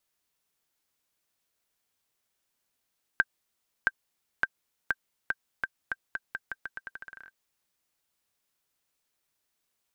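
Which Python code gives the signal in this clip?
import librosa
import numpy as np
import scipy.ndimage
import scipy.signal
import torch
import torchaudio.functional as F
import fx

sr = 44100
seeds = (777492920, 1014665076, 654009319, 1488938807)

y = fx.bouncing_ball(sr, first_gap_s=0.67, ratio=0.84, hz=1570.0, decay_ms=40.0, level_db=-9.0)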